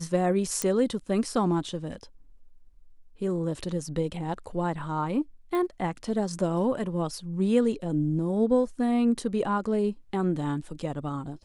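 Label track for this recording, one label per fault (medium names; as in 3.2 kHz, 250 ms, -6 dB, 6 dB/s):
0.620000	0.620000	pop -12 dBFS
5.550000	5.550000	pop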